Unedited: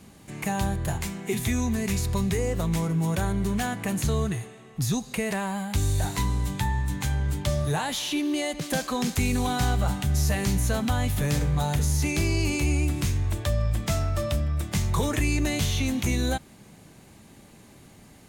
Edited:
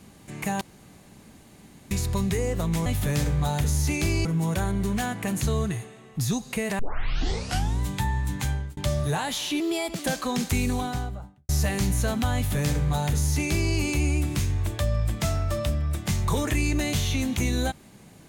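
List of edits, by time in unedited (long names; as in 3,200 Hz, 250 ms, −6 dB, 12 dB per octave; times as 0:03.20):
0:00.61–0:01.91: fill with room tone
0:05.40: tape start 1.02 s
0:07.11–0:07.38: fade out
0:08.21–0:08.65: play speed 113%
0:09.20–0:10.15: fade out and dull
0:11.01–0:12.40: duplicate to 0:02.86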